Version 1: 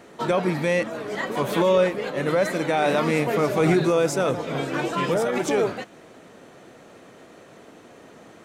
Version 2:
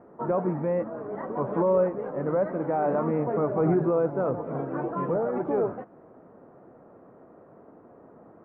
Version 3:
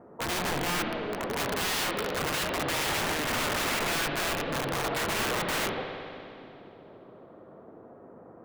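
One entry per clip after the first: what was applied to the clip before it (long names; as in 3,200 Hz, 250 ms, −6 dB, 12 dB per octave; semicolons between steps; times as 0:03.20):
low-pass filter 1,200 Hz 24 dB per octave; level −3.5 dB
wrap-around overflow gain 25.5 dB; spring reverb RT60 2.5 s, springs 58 ms, chirp 35 ms, DRR 3.5 dB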